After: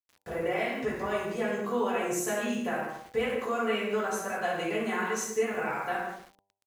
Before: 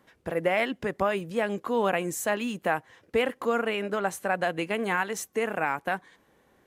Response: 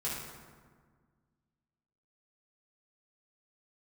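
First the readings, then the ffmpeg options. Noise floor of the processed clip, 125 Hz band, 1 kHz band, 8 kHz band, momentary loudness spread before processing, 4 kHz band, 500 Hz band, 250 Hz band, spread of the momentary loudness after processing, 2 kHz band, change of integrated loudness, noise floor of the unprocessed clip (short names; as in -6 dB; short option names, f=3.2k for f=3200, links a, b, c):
-79 dBFS, -4.0 dB, -3.0 dB, +1.0 dB, 4 LU, -2.5 dB, -2.0 dB, -1.0 dB, 5 LU, -3.0 dB, -2.5 dB, -65 dBFS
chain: -filter_complex "[0:a]asplit=2[a][b];[b]adelay=98,lowpass=f=1.2k:p=1,volume=-10.5dB,asplit=2[c][d];[d]adelay=98,lowpass=f=1.2k:p=1,volume=0.43,asplit=2[e][f];[f]adelay=98,lowpass=f=1.2k:p=1,volume=0.43,asplit=2[g][h];[h]adelay=98,lowpass=f=1.2k:p=1,volume=0.43,asplit=2[i][j];[j]adelay=98,lowpass=f=1.2k:p=1,volume=0.43[k];[a][c][e][g][i][k]amix=inputs=6:normalize=0,alimiter=limit=-17.5dB:level=0:latency=1,equalizer=f=160:t=o:w=0.33:g=-8,equalizer=f=250:t=o:w=0.33:g=-3,equalizer=f=6.3k:t=o:w=0.33:g=8,asplit=2[l][m];[m]acompressor=threshold=-50dB:ratio=6,volume=-3dB[n];[l][n]amix=inputs=2:normalize=0[o];[1:a]atrim=start_sample=2205,afade=t=out:st=0.27:d=0.01,atrim=end_sample=12348[p];[o][p]afir=irnorm=-1:irlink=0,aeval=exprs='val(0)*gte(abs(val(0)),0.00668)':c=same,bandreject=f=98.29:t=h:w=4,bandreject=f=196.58:t=h:w=4,bandreject=f=294.87:t=h:w=4,bandreject=f=393.16:t=h:w=4,bandreject=f=491.45:t=h:w=4,bandreject=f=589.74:t=h:w=4,bandreject=f=688.03:t=h:w=4,bandreject=f=786.32:t=h:w=4,bandreject=f=884.61:t=h:w=4,bandreject=f=982.9:t=h:w=4,volume=-5.5dB"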